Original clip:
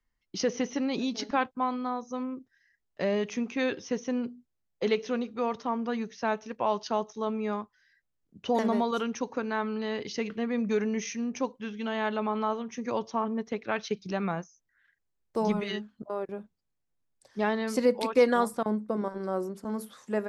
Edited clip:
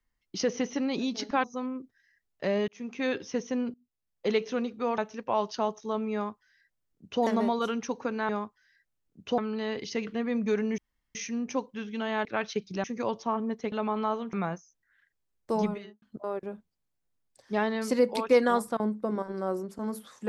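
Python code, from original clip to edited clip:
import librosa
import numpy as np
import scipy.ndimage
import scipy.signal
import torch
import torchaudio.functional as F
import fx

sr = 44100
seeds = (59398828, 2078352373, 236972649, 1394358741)

y = fx.studio_fade_out(x, sr, start_s=15.42, length_s=0.46)
y = fx.edit(y, sr, fx.cut(start_s=1.44, length_s=0.57),
    fx.fade_in_span(start_s=3.25, length_s=0.54, curve='qsin'),
    fx.fade_in_from(start_s=4.31, length_s=0.54, floor_db=-22.5),
    fx.cut(start_s=5.55, length_s=0.75),
    fx.duplicate(start_s=7.46, length_s=1.09, to_s=9.61),
    fx.insert_room_tone(at_s=11.01, length_s=0.37),
    fx.swap(start_s=12.11, length_s=0.61, other_s=13.6, other_length_s=0.59), tone=tone)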